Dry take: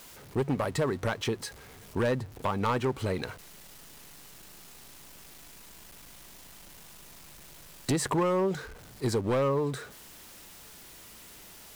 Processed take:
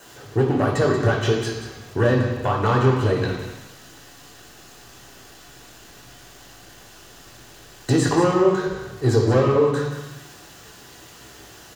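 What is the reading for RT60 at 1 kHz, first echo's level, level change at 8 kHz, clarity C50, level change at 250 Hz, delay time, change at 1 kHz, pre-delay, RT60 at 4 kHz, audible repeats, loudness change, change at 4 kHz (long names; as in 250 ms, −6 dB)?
1.1 s, −10.0 dB, +4.0 dB, 3.5 dB, +9.5 dB, 185 ms, +8.0 dB, 3 ms, 1.1 s, 1, +9.5 dB, +7.0 dB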